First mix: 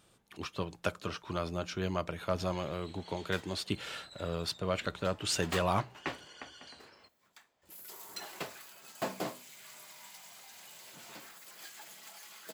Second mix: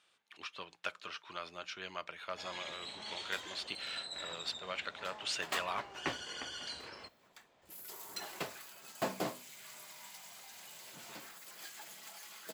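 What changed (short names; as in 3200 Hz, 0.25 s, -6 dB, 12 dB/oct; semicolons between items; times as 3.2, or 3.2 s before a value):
speech: add band-pass 2500 Hz, Q 0.88; first sound +9.5 dB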